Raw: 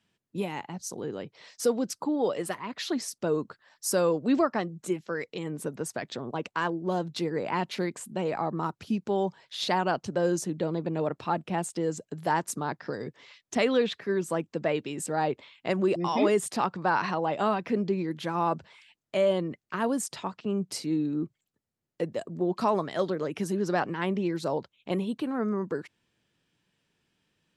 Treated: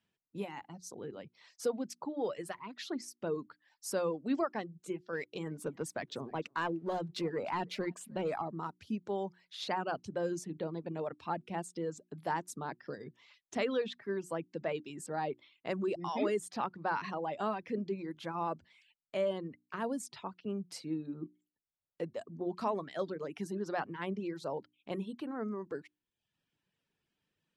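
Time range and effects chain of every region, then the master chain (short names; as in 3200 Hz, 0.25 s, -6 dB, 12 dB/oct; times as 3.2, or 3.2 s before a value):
5.13–8.42 sample leveller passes 1 + echo 0.303 s -21.5 dB
whole clip: notches 60/120/180/240/300/360 Hz; reverb removal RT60 0.69 s; high shelf 5700 Hz -5.5 dB; gain -7.5 dB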